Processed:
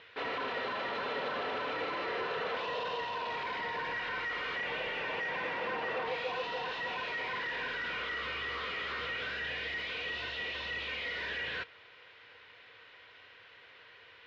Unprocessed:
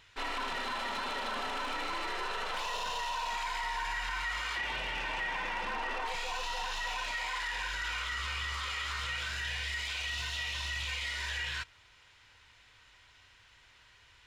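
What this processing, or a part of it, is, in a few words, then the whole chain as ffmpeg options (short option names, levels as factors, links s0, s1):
overdrive pedal into a guitar cabinet: -filter_complex "[0:a]asplit=2[s0][s1];[s1]highpass=f=720:p=1,volume=7.94,asoftclip=type=tanh:threshold=0.0596[s2];[s0][s2]amix=inputs=2:normalize=0,lowpass=f=1200:p=1,volume=0.501,highpass=100,equalizer=f=470:t=q:w=4:g=10,equalizer=f=890:t=q:w=4:g=-7,equalizer=f=1300:t=q:w=4:g=-3,lowpass=f=4500:w=0.5412,lowpass=f=4500:w=1.3066"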